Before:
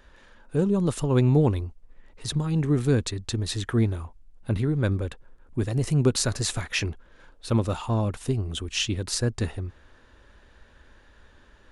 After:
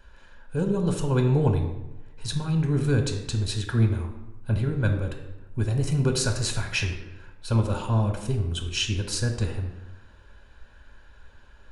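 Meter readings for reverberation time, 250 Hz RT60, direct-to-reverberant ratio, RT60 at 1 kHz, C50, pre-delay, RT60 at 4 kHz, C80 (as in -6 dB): 1.0 s, 1.1 s, 3.5 dB, 1.0 s, 7.0 dB, 3 ms, 0.70 s, 9.5 dB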